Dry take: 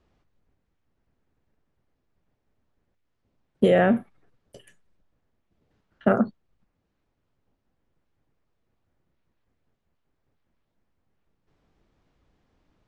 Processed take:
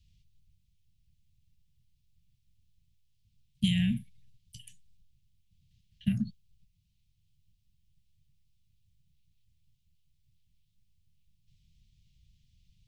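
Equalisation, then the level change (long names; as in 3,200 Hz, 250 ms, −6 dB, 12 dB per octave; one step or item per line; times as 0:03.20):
inverse Chebyshev band-stop filter 330–1,400 Hz, stop band 50 dB
parametric band 1,000 Hz +8.5 dB 0.81 octaves
+6.0 dB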